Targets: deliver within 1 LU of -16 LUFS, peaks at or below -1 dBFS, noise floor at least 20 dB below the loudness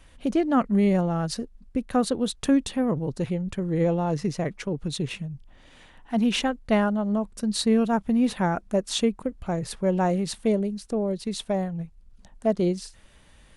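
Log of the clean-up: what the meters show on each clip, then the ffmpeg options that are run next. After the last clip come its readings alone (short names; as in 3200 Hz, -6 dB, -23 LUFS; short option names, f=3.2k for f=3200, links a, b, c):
loudness -25.5 LUFS; peak -11.0 dBFS; loudness target -16.0 LUFS
-> -af "volume=9.5dB"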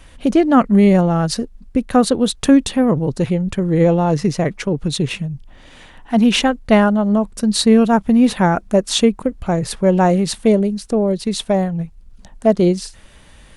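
loudness -16.0 LUFS; peak -1.5 dBFS; noise floor -44 dBFS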